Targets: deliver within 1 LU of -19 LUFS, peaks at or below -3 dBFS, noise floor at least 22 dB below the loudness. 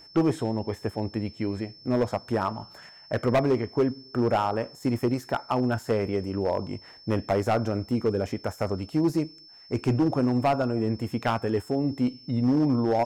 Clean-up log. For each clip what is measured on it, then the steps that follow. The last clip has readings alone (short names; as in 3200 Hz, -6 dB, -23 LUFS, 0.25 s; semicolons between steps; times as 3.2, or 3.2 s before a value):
clipped 1.3%; flat tops at -17.0 dBFS; steady tone 5300 Hz; tone level -48 dBFS; loudness -27.0 LUFS; peak -17.0 dBFS; loudness target -19.0 LUFS
-> clip repair -17 dBFS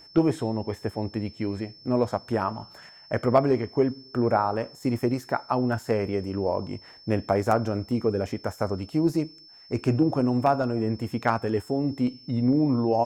clipped 0.0%; steady tone 5300 Hz; tone level -48 dBFS
-> notch 5300 Hz, Q 30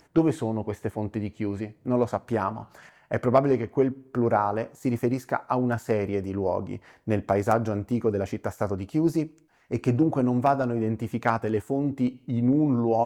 steady tone none; loudness -26.5 LUFS; peak -8.0 dBFS; loudness target -19.0 LUFS
-> gain +7.5 dB; limiter -3 dBFS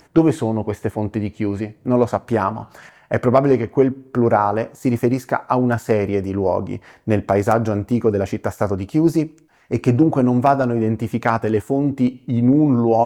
loudness -19.0 LUFS; peak -3.0 dBFS; noise floor -52 dBFS